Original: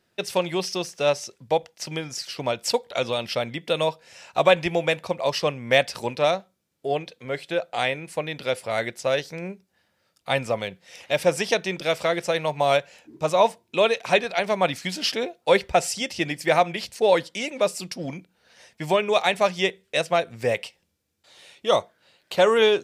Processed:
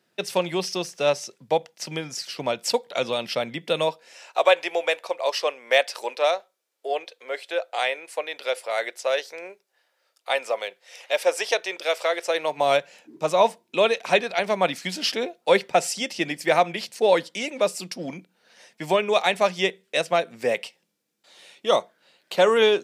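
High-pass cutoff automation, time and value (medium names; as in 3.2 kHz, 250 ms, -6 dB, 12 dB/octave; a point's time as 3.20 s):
high-pass 24 dB/octave
3.75 s 140 Hz
4.39 s 430 Hz
12.20 s 430 Hz
12.68 s 170 Hz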